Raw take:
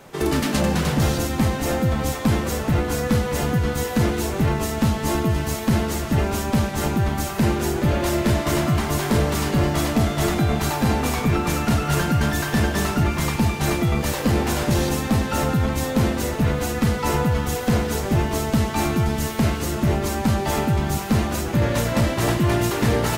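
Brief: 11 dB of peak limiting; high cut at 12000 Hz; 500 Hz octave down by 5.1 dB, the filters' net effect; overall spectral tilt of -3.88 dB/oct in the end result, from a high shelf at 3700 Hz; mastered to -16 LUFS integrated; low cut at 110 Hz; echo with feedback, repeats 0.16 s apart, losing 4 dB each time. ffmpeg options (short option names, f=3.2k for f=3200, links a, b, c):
-af "highpass=110,lowpass=12k,equalizer=f=500:t=o:g=-7,highshelf=f=3.7k:g=7.5,alimiter=limit=-18.5dB:level=0:latency=1,aecho=1:1:160|320|480|640|800|960|1120|1280|1440:0.631|0.398|0.25|0.158|0.0994|0.0626|0.0394|0.0249|0.0157,volume=9dB"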